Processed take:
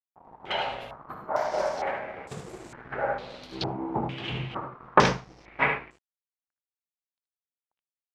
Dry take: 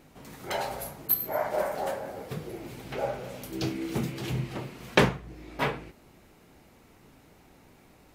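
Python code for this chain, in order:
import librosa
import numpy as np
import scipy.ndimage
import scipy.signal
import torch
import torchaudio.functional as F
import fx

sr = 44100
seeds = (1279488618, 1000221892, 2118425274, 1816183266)

y = np.sign(x) * np.maximum(np.abs(x) - 10.0 ** (-45.0 / 20.0), 0.0)
y = fx.peak_eq(y, sr, hz=950.0, db=5.0, octaves=1.6)
y = fx.room_early_taps(y, sr, ms=(60, 76), db=(-11.5, -7.0))
y = fx.filter_held_lowpass(y, sr, hz=2.2, low_hz=880.0, high_hz=7600.0)
y = F.gain(torch.from_numpy(y), -2.5).numpy()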